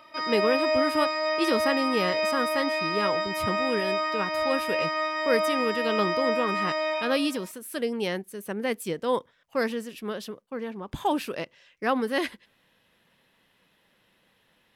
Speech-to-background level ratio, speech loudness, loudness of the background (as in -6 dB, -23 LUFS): -3.0 dB, -30.0 LUFS, -27.0 LUFS